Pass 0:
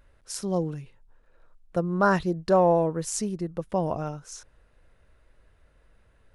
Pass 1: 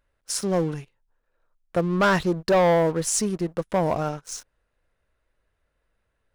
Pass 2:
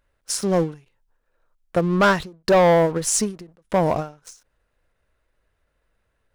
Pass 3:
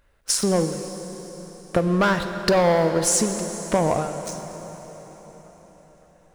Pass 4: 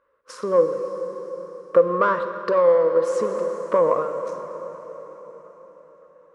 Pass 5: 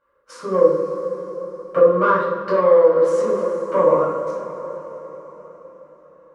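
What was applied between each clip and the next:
low-shelf EQ 320 Hz −5.5 dB; leveller curve on the samples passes 3; level −3.5 dB
every ending faded ahead of time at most 170 dB per second; level +3.5 dB
downward compressor 4 to 1, threshold −26 dBFS, peak gain reduction 11 dB; dense smooth reverb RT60 4.8 s, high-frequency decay 0.85×, DRR 7 dB; level +7 dB
pair of resonant band-passes 750 Hz, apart 1.1 octaves; speech leveller within 3 dB 0.5 s; level +8.5 dB
rectangular room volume 850 cubic metres, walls furnished, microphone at 7.6 metres; level −7 dB

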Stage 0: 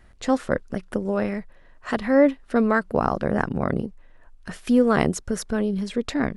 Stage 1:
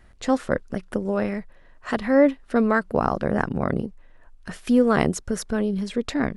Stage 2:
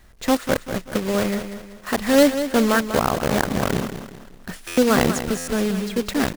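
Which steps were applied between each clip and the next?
no processing that can be heard
one scale factor per block 3 bits; repeating echo 192 ms, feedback 39%, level −10 dB; buffer that repeats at 0:04.67/0:05.37, samples 512, times 8; level +1.5 dB

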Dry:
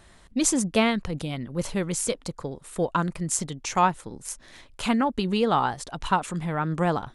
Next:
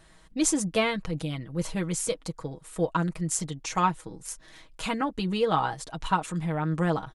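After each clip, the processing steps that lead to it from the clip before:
comb filter 6.3 ms, depth 65%
level −4 dB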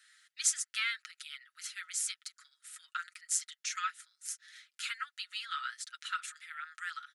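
Chebyshev high-pass with heavy ripple 1,300 Hz, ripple 3 dB
level −1 dB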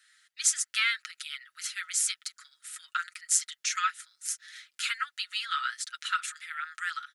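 automatic gain control gain up to 7 dB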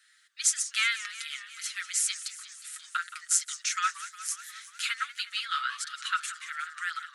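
feedback echo with a swinging delay time 180 ms, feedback 70%, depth 207 cents, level −14.5 dB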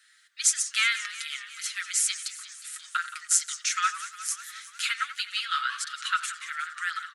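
far-end echo of a speakerphone 90 ms, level −14 dB
level +2.5 dB

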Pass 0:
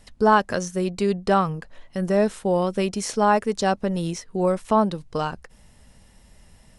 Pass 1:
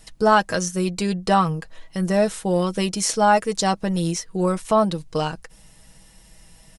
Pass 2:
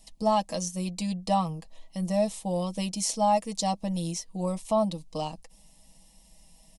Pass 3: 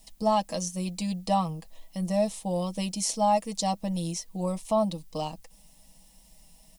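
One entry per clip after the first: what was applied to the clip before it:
high-shelf EQ 3,500 Hz +8 dB; comb filter 6.2 ms, depth 56%
phaser with its sweep stopped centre 400 Hz, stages 6; level −5.5 dB
background noise blue −66 dBFS

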